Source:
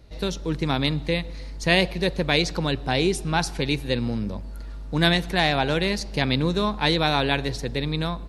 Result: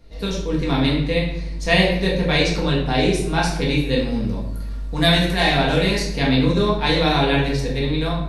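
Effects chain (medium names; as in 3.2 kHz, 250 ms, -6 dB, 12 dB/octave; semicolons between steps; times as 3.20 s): 3.93–6.14 s: treble shelf 5.8 kHz +6.5 dB; simulated room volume 200 m³, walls mixed, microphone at 1.7 m; trim -3 dB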